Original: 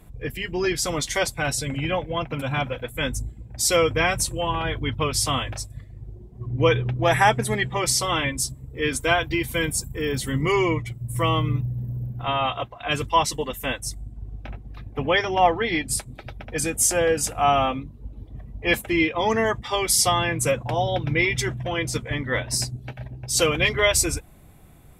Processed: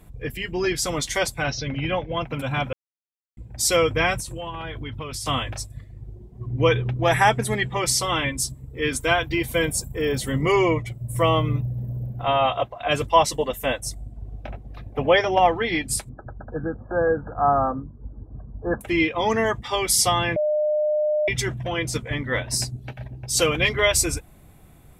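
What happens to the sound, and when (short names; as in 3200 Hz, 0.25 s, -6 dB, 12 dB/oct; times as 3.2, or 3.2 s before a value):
1.44–2.12 steep low-pass 6200 Hz 96 dB/oct
2.73–3.37 mute
4.19–5.26 compressor 10:1, threshold -28 dBFS
9.37–15.39 bell 610 Hz +8 dB
16.09–18.81 brick-wall FIR low-pass 1700 Hz
20.36–21.28 bleep 605 Hz -18.5 dBFS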